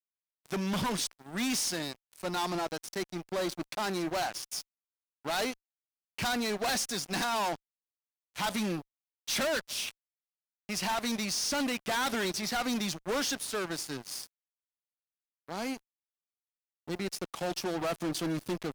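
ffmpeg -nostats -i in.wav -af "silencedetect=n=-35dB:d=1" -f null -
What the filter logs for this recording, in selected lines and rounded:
silence_start: 14.26
silence_end: 15.49 | silence_duration: 1.24
silence_start: 15.76
silence_end: 16.88 | silence_duration: 1.12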